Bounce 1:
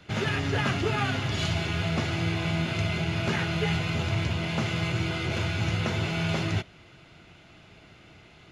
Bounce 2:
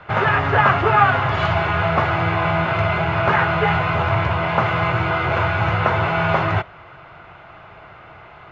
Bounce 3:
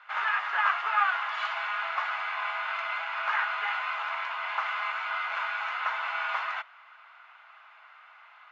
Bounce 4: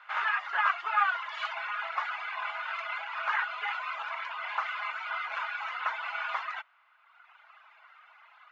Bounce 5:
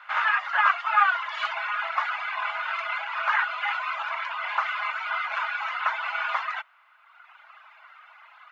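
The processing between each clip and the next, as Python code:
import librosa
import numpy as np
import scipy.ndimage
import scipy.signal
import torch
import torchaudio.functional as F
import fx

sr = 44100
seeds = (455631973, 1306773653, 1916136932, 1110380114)

y1 = fx.curve_eq(x, sr, hz=(140.0, 240.0, 540.0, 1100.0, 9600.0), db=(0, -8, 6, 14, -25))
y1 = y1 * librosa.db_to_amplitude(6.5)
y2 = scipy.signal.sosfilt(scipy.signal.butter(4, 1000.0, 'highpass', fs=sr, output='sos'), y1)
y2 = y2 * librosa.db_to_amplitude(-8.0)
y3 = fx.dereverb_blind(y2, sr, rt60_s=1.5)
y4 = scipy.signal.sosfilt(scipy.signal.ellip(4, 1.0, 40, 540.0, 'highpass', fs=sr, output='sos'), y3)
y4 = y4 * librosa.db_to_amplitude(6.0)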